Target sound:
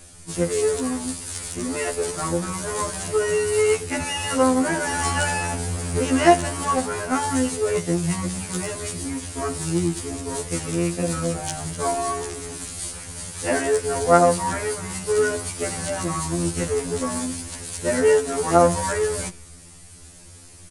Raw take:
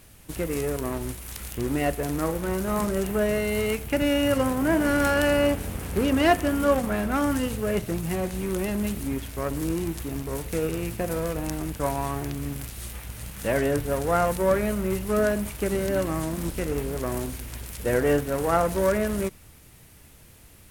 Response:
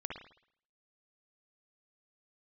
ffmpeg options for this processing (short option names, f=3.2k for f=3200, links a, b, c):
-filter_complex "[0:a]acrossover=split=370[a][b];[a]acompressor=threshold=-29dB:ratio=8[c];[c][b]amix=inputs=2:normalize=0,asplit=2[d][e];[1:a]atrim=start_sample=2205,lowshelf=f=100:g=5.5[f];[e][f]afir=irnorm=-1:irlink=0,volume=-16.5dB[g];[d][g]amix=inputs=2:normalize=0,aresample=22050,aresample=44100,aexciter=amount=3.7:drive=8.4:freq=5.5k,asplit=2[h][i];[i]asetrate=22050,aresample=44100,atempo=2,volume=-14dB[j];[h][j]amix=inputs=2:normalize=0,highshelf=f=5.4k:g=-10,afftfilt=real='re*2*eq(mod(b,4),0)':imag='im*2*eq(mod(b,4),0)':win_size=2048:overlap=0.75,volume=5.5dB"